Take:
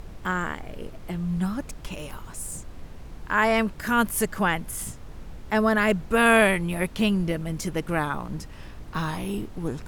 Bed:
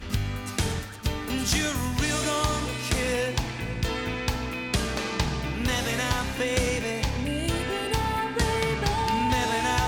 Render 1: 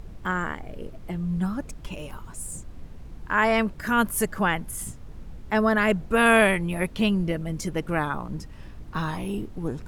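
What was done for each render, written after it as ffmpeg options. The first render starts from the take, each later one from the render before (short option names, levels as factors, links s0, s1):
-af "afftdn=nr=6:nf=-42"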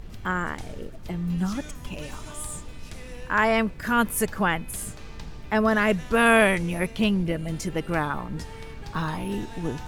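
-filter_complex "[1:a]volume=0.141[s0];[0:a][s0]amix=inputs=2:normalize=0"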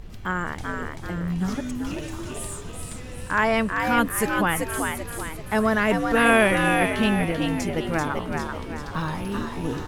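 -filter_complex "[0:a]asplit=6[s0][s1][s2][s3][s4][s5];[s1]adelay=387,afreqshift=75,volume=0.596[s6];[s2]adelay=774,afreqshift=150,volume=0.257[s7];[s3]adelay=1161,afreqshift=225,volume=0.11[s8];[s4]adelay=1548,afreqshift=300,volume=0.0473[s9];[s5]adelay=1935,afreqshift=375,volume=0.0204[s10];[s0][s6][s7][s8][s9][s10]amix=inputs=6:normalize=0"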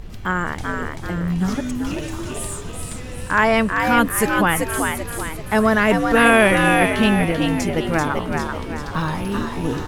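-af "volume=1.78,alimiter=limit=0.794:level=0:latency=1"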